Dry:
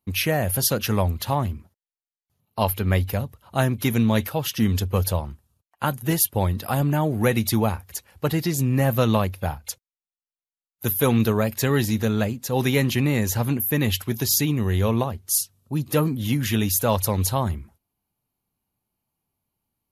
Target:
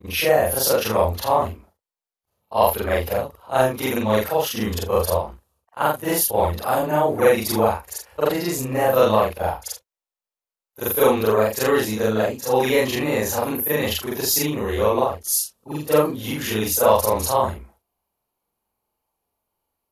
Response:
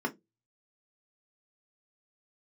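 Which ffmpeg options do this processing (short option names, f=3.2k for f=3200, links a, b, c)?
-af "afftfilt=real='re':imag='-im':win_size=4096:overlap=0.75,acontrast=69,equalizer=f=125:t=o:w=1:g=-11,equalizer=f=250:t=o:w=1:g=-4,equalizer=f=500:t=o:w=1:g=8,equalizer=f=1k:t=o:w=1:g=5,volume=-1dB"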